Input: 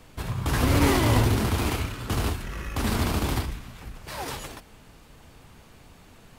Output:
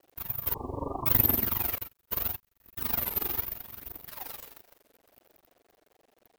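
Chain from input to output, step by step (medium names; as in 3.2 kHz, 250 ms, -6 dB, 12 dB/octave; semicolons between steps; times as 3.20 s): tracing distortion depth 0.1 ms; careless resampling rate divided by 3×, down filtered, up zero stuff; echo that smears into a reverb 458 ms, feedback 51%, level -12 dB; phaser 0.76 Hz, delay 2.6 ms, feedback 49%; crossover distortion -33 dBFS; band noise 250–740 Hz -57 dBFS; 1.78–3.18 s: gate -20 dBFS, range -34 dB; bass shelf 170 Hz -11.5 dB; AM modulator 23 Hz, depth 70%; 0.54–1.07 s: brick-wall FIR low-pass 1.2 kHz; word length cut 10-bit, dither none; warped record 33 1/3 rpm, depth 160 cents; trim -6 dB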